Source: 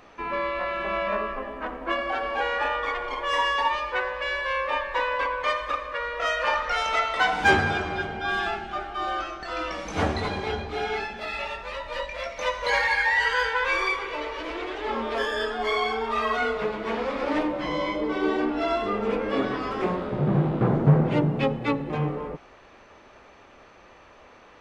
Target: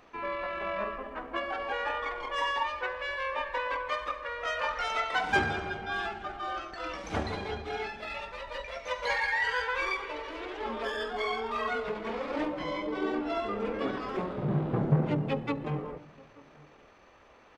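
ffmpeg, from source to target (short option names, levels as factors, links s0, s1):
-filter_complex "[0:a]asplit=2[s0][s1];[s1]adelay=1224,volume=0.0708,highshelf=f=4000:g=-27.6[s2];[s0][s2]amix=inputs=2:normalize=0,atempo=1.4,volume=0.501"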